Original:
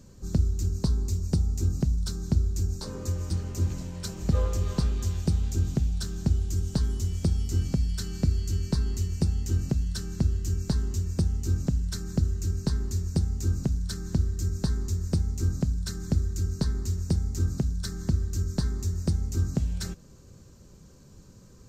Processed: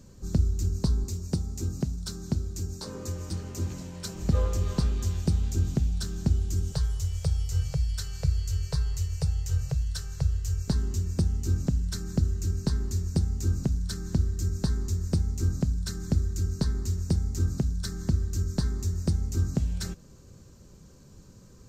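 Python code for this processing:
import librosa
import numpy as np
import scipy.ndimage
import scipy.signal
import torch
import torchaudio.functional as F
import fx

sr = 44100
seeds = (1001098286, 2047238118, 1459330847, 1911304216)

y = fx.highpass(x, sr, hz=130.0, slope=6, at=(1.04, 4.14))
y = fx.ellip_bandstop(y, sr, low_hz=150.0, high_hz=450.0, order=3, stop_db=40, at=(6.72, 10.68))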